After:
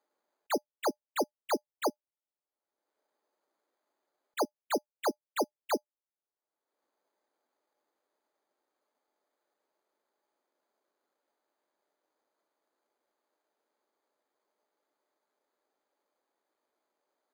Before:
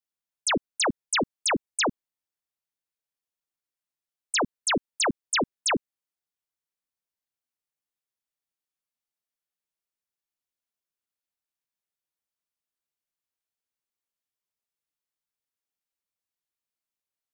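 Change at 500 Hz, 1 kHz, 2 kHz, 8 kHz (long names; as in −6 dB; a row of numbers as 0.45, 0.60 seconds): −2.0, −5.0, −14.0, −15.0 decibels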